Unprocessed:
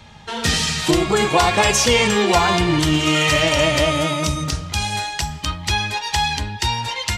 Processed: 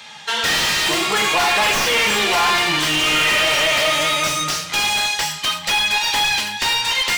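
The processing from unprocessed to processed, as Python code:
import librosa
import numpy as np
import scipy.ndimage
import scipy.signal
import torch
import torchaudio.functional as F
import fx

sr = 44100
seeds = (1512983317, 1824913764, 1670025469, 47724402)

y = fx.tracing_dist(x, sr, depth_ms=0.08)
y = scipy.signal.sosfilt(scipy.signal.butter(4, 120.0, 'highpass', fs=sr, output='sos'), y)
y = fx.low_shelf(y, sr, hz=360.0, db=-8.0)
y = fx.rev_gated(y, sr, seeds[0], gate_ms=150, shape='falling', drr_db=5.5)
y = 10.0 ** (-17.5 / 20.0) * np.tanh(y / 10.0 ** (-17.5 / 20.0))
y = fx.tilt_shelf(y, sr, db=-6.5, hz=870.0)
y = fx.hum_notches(y, sr, base_hz=60, count=5)
y = y + 10.0 ** (-19.5 / 20.0) * np.pad(y, (int(329 * sr / 1000.0), 0))[:len(y)]
y = fx.slew_limit(y, sr, full_power_hz=300.0)
y = F.gain(torch.from_numpy(y), 4.5).numpy()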